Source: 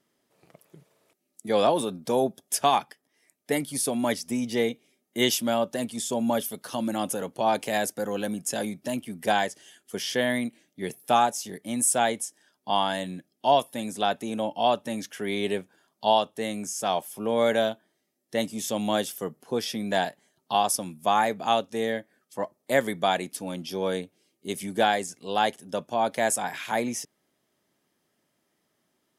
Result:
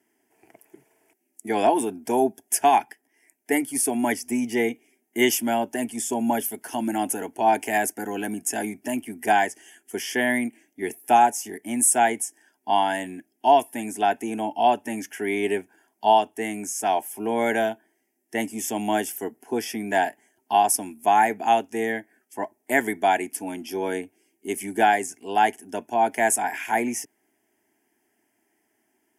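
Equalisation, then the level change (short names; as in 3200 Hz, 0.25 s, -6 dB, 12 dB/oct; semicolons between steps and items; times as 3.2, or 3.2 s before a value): HPF 100 Hz; fixed phaser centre 800 Hz, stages 8; +6.0 dB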